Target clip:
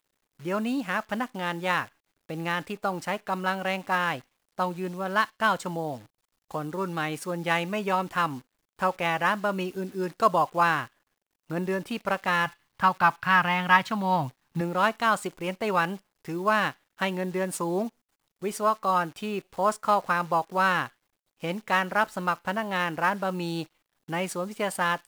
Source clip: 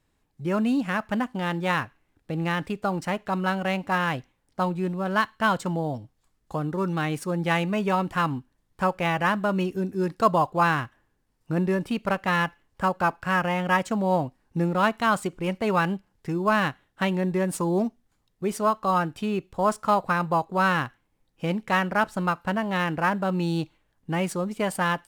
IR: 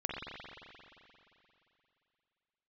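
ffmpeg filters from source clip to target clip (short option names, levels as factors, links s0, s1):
-filter_complex "[0:a]asettb=1/sr,asplit=3[s0][s1][s2];[s0]atrim=end=12.464[s3];[s1]atrim=start=12.46:end=14.61,asetpts=PTS-STARTPTS,afade=t=in:d=0.004:c=qsin,afade=t=out:st=2.146:d=0.004:c=qsin,equalizer=f=125:t=o:w=1:g=10,equalizer=f=500:t=o:w=1:g=-9,equalizer=f=1000:t=o:w=1:g=6,equalizer=f=2000:t=o:w=1:g=3,equalizer=f=4000:t=o:w=1:g=8,equalizer=f=8000:t=o:w=1:g=-10[s4];[s2]atrim=start=14.606[s5];[s3][s4]acrossfade=d=0.004:c1=hsin:c2=qsin[s6];[s6][s5]acrossfade=d=0.004:c1=qsin:c2=hsin,acrusher=bits=9:dc=4:mix=0:aa=0.000001,lowshelf=f=240:g=-11"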